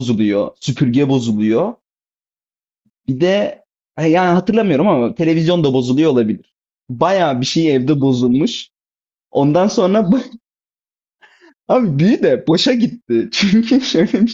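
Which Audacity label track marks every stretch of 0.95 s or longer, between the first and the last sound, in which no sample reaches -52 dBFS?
1.770000	2.860000	silence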